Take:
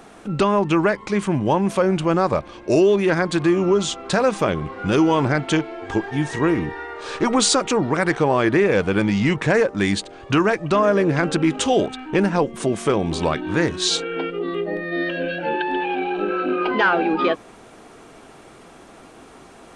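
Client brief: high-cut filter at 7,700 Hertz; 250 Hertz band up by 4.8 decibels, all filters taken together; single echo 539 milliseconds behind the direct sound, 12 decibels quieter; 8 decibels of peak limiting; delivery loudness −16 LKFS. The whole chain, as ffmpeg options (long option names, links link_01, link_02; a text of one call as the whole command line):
ffmpeg -i in.wav -af "lowpass=7700,equalizer=frequency=250:width_type=o:gain=7,alimiter=limit=-11.5dB:level=0:latency=1,aecho=1:1:539:0.251,volume=5dB" out.wav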